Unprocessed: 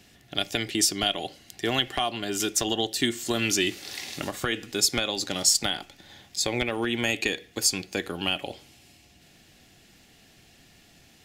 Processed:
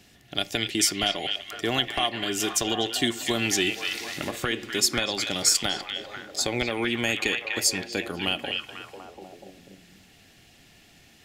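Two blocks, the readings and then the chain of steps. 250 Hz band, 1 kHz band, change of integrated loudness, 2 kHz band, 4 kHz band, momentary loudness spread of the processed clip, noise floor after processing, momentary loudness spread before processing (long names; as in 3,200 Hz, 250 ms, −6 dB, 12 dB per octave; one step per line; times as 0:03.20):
0.0 dB, +1.0 dB, +0.5 dB, +2.0 dB, +1.0 dB, 10 LU, −56 dBFS, 11 LU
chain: echo through a band-pass that steps 246 ms, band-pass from 2,500 Hz, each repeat −0.7 octaves, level −2 dB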